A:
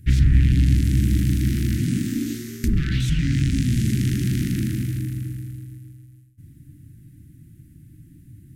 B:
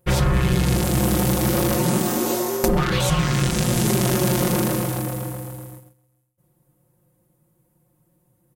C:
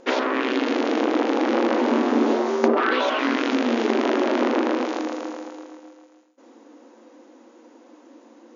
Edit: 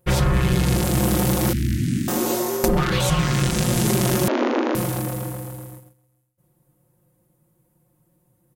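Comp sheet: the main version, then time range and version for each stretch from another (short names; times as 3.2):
B
1.53–2.08 from A
4.28–4.75 from C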